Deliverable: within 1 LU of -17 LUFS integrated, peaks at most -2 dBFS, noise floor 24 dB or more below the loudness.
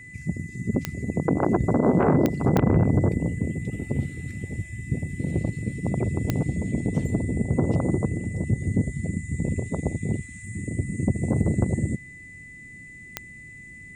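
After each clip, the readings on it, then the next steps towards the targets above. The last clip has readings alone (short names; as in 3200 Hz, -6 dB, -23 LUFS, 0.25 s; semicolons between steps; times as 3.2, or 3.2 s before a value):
clicks 5; steady tone 2000 Hz; tone level -42 dBFS; loudness -25.5 LUFS; peak -7.0 dBFS; loudness target -17.0 LUFS
-> de-click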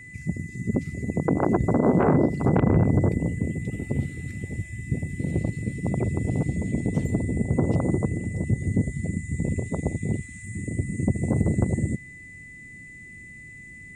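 clicks 0; steady tone 2000 Hz; tone level -42 dBFS
-> notch 2000 Hz, Q 30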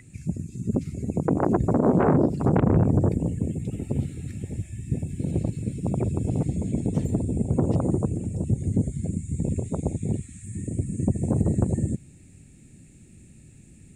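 steady tone none; loudness -26.0 LUFS; peak -7.0 dBFS; loudness target -17.0 LUFS
-> gain +9 dB; limiter -2 dBFS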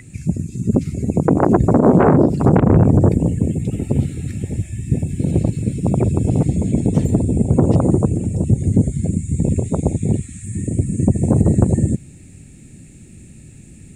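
loudness -17.0 LUFS; peak -2.0 dBFS; noise floor -42 dBFS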